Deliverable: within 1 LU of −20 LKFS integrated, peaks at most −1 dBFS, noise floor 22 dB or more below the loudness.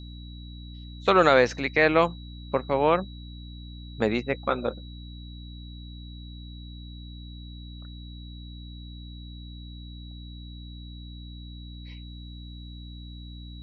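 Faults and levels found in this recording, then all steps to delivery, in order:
mains hum 60 Hz; hum harmonics up to 300 Hz; level of the hum −39 dBFS; interfering tone 3,900 Hz; level of the tone −49 dBFS; integrated loudness −23.5 LKFS; sample peak −5.5 dBFS; target loudness −20.0 LKFS
→ hum removal 60 Hz, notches 5
notch filter 3,900 Hz, Q 30
level +3.5 dB

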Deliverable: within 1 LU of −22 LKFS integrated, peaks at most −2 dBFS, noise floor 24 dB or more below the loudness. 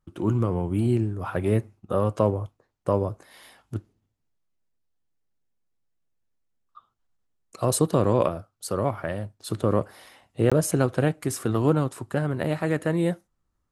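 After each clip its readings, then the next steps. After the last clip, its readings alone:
number of dropouts 1; longest dropout 16 ms; integrated loudness −25.5 LKFS; sample peak −7.0 dBFS; target loudness −22.0 LKFS
→ repair the gap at 0:10.50, 16 ms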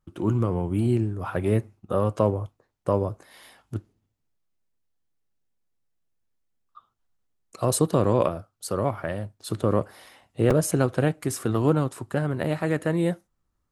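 number of dropouts 0; integrated loudness −25.5 LKFS; sample peak −7.0 dBFS; target loudness −22.0 LKFS
→ level +3.5 dB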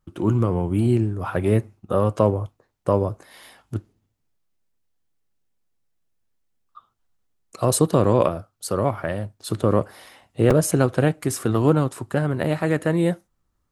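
integrated loudness −22.0 LKFS; sample peak −3.5 dBFS; background noise floor −72 dBFS

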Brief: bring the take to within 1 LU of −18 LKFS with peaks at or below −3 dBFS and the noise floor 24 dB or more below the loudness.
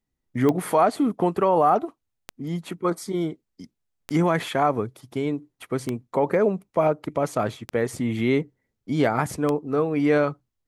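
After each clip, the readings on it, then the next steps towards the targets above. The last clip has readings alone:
number of clicks 6; integrated loudness −24.0 LKFS; sample peak −7.0 dBFS; target loudness −18.0 LKFS
→ click removal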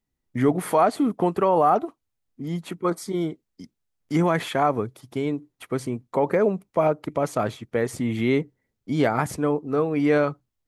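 number of clicks 0; integrated loudness −24.0 LKFS; sample peak −7.0 dBFS; target loudness −18.0 LKFS
→ level +6 dB
brickwall limiter −3 dBFS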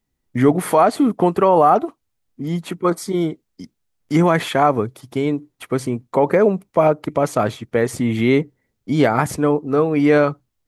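integrated loudness −18.0 LKFS; sample peak −3.0 dBFS; background noise floor −74 dBFS

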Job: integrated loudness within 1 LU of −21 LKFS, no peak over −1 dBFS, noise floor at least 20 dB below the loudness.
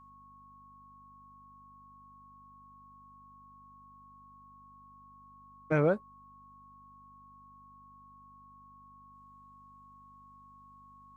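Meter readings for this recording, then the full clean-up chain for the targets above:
mains hum 50 Hz; hum harmonics up to 250 Hz; level of the hum −63 dBFS; interfering tone 1,100 Hz; level of the tone −54 dBFS; integrated loudness −30.0 LKFS; sample peak −14.5 dBFS; target loudness −21.0 LKFS
→ hum removal 50 Hz, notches 5
notch filter 1,100 Hz, Q 30
level +9 dB

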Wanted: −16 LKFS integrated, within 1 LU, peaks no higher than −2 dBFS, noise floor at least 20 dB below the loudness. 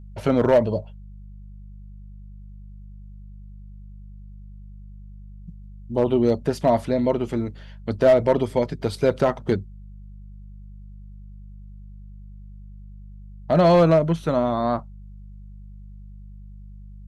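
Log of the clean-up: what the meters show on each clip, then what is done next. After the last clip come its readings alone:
share of clipped samples 0.5%; peaks flattened at −9.5 dBFS; mains hum 50 Hz; hum harmonics up to 200 Hz; level of the hum −38 dBFS; integrated loudness −21.0 LKFS; sample peak −9.5 dBFS; target loudness −16.0 LKFS
→ clipped peaks rebuilt −9.5 dBFS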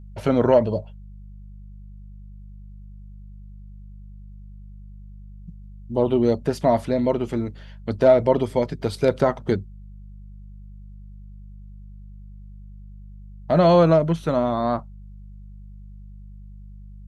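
share of clipped samples 0.0%; mains hum 50 Hz; hum harmonics up to 200 Hz; level of the hum −38 dBFS
→ hum removal 50 Hz, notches 4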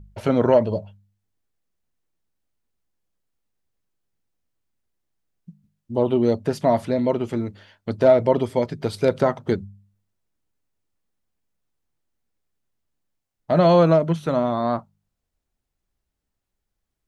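mains hum none found; integrated loudness −21.0 LKFS; sample peak −4.0 dBFS; target loudness −16.0 LKFS
→ level +5 dB
brickwall limiter −2 dBFS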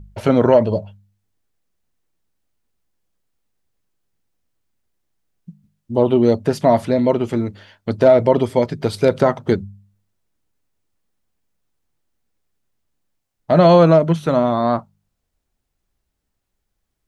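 integrated loudness −16.5 LKFS; sample peak −2.0 dBFS; background noise floor −75 dBFS

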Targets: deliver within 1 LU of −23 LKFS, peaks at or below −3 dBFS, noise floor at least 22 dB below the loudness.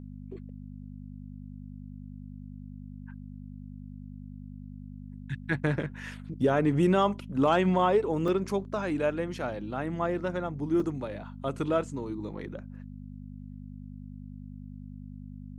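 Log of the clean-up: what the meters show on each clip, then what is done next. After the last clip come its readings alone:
number of dropouts 2; longest dropout 3.0 ms; mains hum 50 Hz; hum harmonics up to 250 Hz; level of the hum −40 dBFS; integrated loudness −29.0 LKFS; sample peak −12.5 dBFS; target loudness −23.0 LKFS
→ repair the gap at 0:08.28/0:10.80, 3 ms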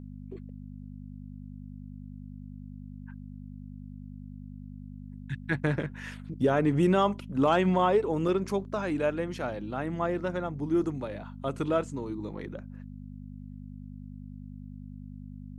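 number of dropouts 0; mains hum 50 Hz; hum harmonics up to 250 Hz; level of the hum −40 dBFS
→ hum removal 50 Hz, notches 5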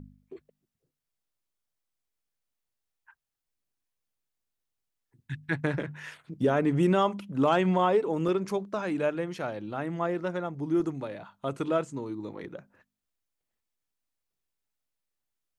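mains hum none found; integrated loudness −29.0 LKFS; sample peak −12.5 dBFS; target loudness −23.0 LKFS
→ level +6 dB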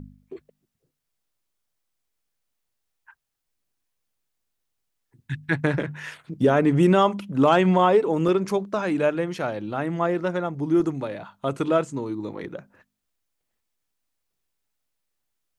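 integrated loudness −23.0 LKFS; sample peak −6.5 dBFS; background noise floor −79 dBFS

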